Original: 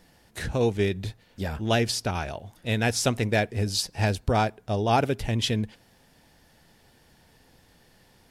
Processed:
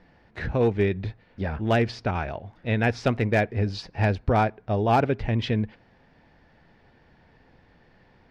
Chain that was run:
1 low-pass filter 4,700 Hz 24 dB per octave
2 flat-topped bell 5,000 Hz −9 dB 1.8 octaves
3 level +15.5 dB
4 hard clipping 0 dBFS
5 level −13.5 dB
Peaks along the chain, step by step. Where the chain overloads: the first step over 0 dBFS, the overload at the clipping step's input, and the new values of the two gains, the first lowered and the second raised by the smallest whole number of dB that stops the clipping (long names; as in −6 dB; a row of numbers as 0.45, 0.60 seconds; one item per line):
−9.5, −11.0, +4.5, 0.0, −13.5 dBFS
step 3, 4.5 dB
step 3 +10.5 dB, step 5 −8.5 dB